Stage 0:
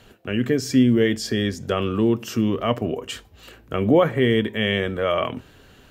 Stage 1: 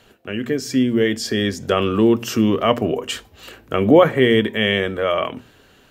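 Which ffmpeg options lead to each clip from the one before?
ffmpeg -i in.wav -af "lowshelf=frequency=140:gain=-7,bandreject=frequency=60:width_type=h:width=6,bandreject=frequency=120:width_type=h:width=6,bandreject=frequency=180:width_type=h:width=6,bandreject=frequency=240:width_type=h:width=6,dynaudnorm=framelen=300:gausssize=9:maxgain=11.5dB" out.wav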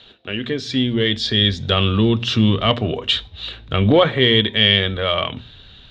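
ffmpeg -i in.wav -filter_complex "[0:a]asubboost=boost=10:cutoff=130,asplit=2[link_01][link_02];[link_02]asoftclip=type=tanh:threshold=-15dB,volume=-9.5dB[link_03];[link_01][link_03]amix=inputs=2:normalize=0,lowpass=frequency=3700:width_type=q:width=12,volume=-3dB" out.wav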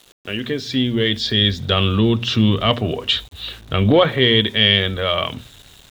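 ffmpeg -i in.wav -af "aeval=exprs='val(0)*gte(abs(val(0)),0.00891)':channel_layout=same" out.wav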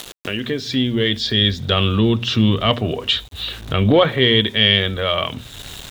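ffmpeg -i in.wav -af "acompressor=mode=upward:threshold=-20dB:ratio=2.5" out.wav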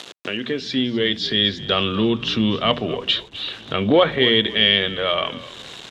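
ffmpeg -i in.wav -filter_complex "[0:a]highpass=190,lowpass=5500,asplit=4[link_01][link_02][link_03][link_04];[link_02]adelay=254,afreqshift=-49,volume=-17dB[link_05];[link_03]adelay=508,afreqshift=-98,volume=-26.1dB[link_06];[link_04]adelay=762,afreqshift=-147,volume=-35.2dB[link_07];[link_01][link_05][link_06][link_07]amix=inputs=4:normalize=0,volume=-1dB" out.wav

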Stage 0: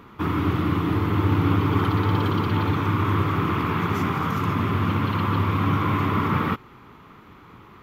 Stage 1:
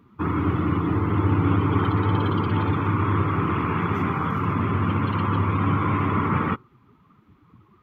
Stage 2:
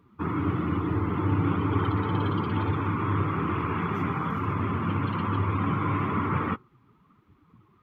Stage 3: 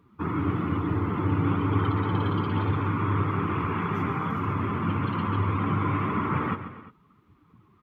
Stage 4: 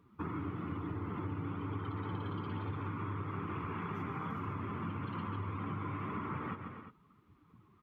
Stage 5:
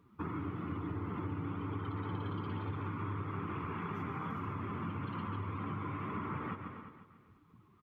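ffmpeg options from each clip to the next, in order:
ffmpeg -i in.wav -af "afftdn=noise_reduction=16:noise_floor=-36" out.wav
ffmpeg -i in.wav -af "flanger=delay=1.8:depth=5.6:regen=-59:speed=1.1:shape=triangular" out.wav
ffmpeg -i in.wav -af "aecho=1:1:137|258|348:0.266|0.141|0.106" out.wav
ffmpeg -i in.wav -af "acompressor=threshold=-31dB:ratio=6,volume=-5dB" out.wav
ffmpeg -i in.wav -af "aecho=1:1:494:0.133" out.wav

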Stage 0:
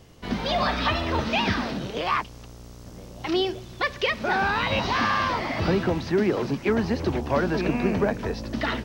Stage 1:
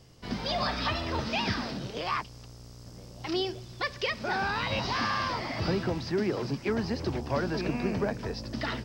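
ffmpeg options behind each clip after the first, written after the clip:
ffmpeg -i in.wav -af "equalizer=frequency=125:width_type=o:width=0.33:gain=6,equalizer=frequency=5000:width_type=o:width=0.33:gain=10,equalizer=frequency=8000:width_type=o:width=0.33:gain=4,volume=-6.5dB" out.wav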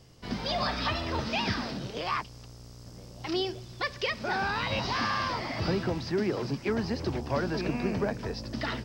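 ffmpeg -i in.wav -af anull out.wav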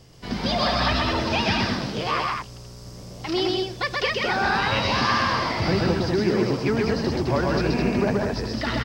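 ffmpeg -i in.wav -af "aecho=1:1:128.3|209.9:0.794|0.562,volume=5dB" out.wav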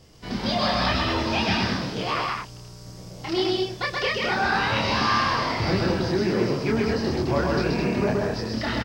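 ffmpeg -i in.wav -filter_complex "[0:a]asplit=2[link_01][link_02];[link_02]adelay=27,volume=-3dB[link_03];[link_01][link_03]amix=inputs=2:normalize=0,volume=-2.5dB" out.wav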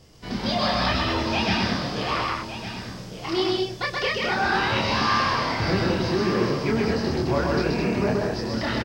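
ffmpeg -i in.wav -af "aecho=1:1:1161:0.282" out.wav

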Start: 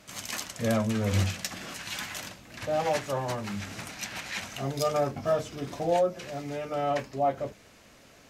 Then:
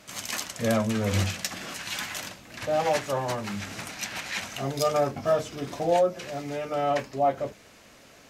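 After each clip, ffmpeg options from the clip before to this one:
ffmpeg -i in.wav -af "lowshelf=frequency=170:gain=-4.5,volume=3dB" out.wav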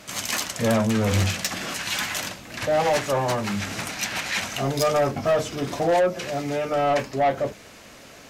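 ffmpeg -i in.wav -af "asoftclip=type=tanh:threshold=-22.5dB,volume=7dB" out.wav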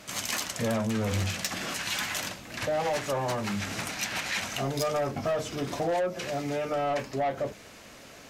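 ffmpeg -i in.wav -af "acompressor=threshold=-24dB:ratio=3,volume=-3dB" out.wav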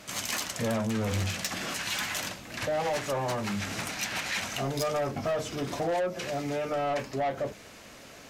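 ffmpeg -i in.wav -af "asoftclip=type=tanh:threshold=-20.5dB" out.wav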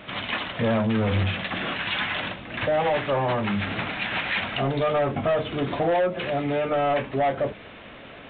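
ffmpeg -i in.wav -af "volume=6.5dB" -ar 8000 -c:a pcm_alaw out.wav

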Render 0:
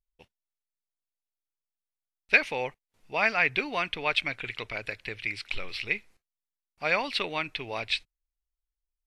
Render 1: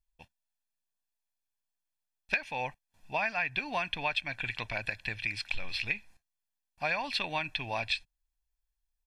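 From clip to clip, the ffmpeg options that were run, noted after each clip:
ffmpeg -i in.wav -af "aecho=1:1:1.2:0.68,acompressor=threshold=-28dB:ratio=6" out.wav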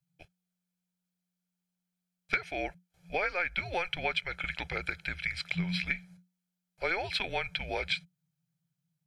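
ffmpeg -i in.wav -af "afreqshift=-180" out.wav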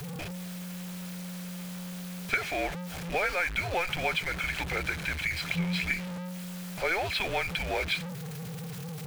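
ffmpeg -i in.wav -af "aeval=exprs='val(0)+0.5*0.0299*sgn(val(0))':channel_layout=same,bass=frequency=250:gain=-1,treble=frequency=4000:gain=-5" out.wav

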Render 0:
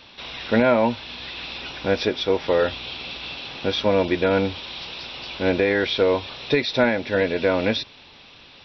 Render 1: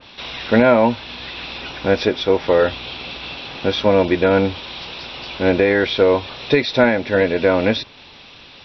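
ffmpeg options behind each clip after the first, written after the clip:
ffmpeg -i in.wav -af "adynamicequalizer=threshold=0.0126:dfrequency=2300:dqfactor=0.7:tfrequency=2300:tqfactor=0.7:attack=5:release=100:ratio=0.375:range=2:mode=cutabove:tftype=highshelf,volume=5dB" out.wav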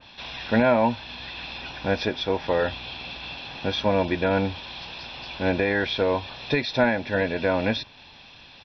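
ffmpeg -i in.wav -af "aecho=1:1:1.2:0.38,volume=-6.5dB" out.wav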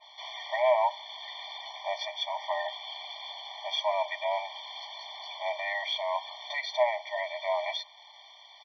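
ffmpeg -i in.wav -af "acontrast=44,afftfilt=real='re*eq(mod(floor(b*sr/1024/600),2),1)':imag='im*eq(mod(floor(b*sr/1024/600),2),1)':win_size=1024:overlap=0.75,volume=-7dB" out.wav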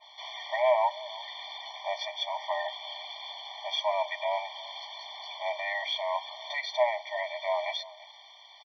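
ffmpeg -i in.wav -filter_complex "[0:a]asplit=2[link_01][link_02];[link_02]adelay=338.2,volume=-19dB,highshelf=frequency=4000:gain=-7.61[link_03];[link_01][link_03]amix=inputs=2:normalize=0" out.wav

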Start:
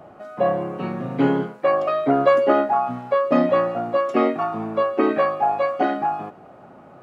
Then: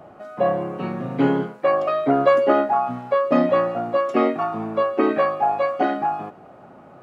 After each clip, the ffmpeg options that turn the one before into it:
ffmpeg -i in.wav -af anull out.wav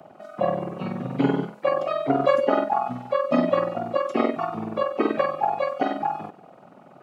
ffmpeg -i in.wav -filter_complex "[0:a]acrossover=split=130|310|1800[link_01][link_02][link_03][link_04];[link_01]aeval=exprs='sgn(val(0))*max(abs(val(0))-0.00141,0)':channel_layout=same[link_05];[link_03]aeval=exprs='val(0)*sin(2*PI*21*n/s)':channel_layout=same[link_06];[link_05][link_02][link_06][link_04]amix=inputs=4:normalize=0" out.wav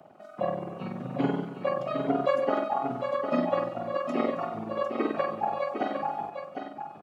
ffmpeg -i in.wav -af "aecho=1:1:271|754:0.15|0.447,volume=-6dB" out.wav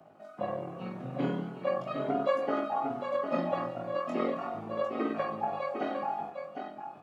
ffmpeg -i in.wav -af "flanger=delay=18:depth=6.1:speed=0.39" out.wav

